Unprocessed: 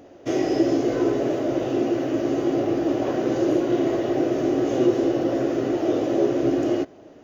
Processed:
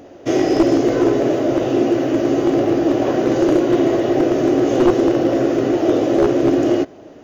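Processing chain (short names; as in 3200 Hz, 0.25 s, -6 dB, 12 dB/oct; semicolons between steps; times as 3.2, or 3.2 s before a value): one-sided fold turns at -14.5 dBFS; gain +6.5 dB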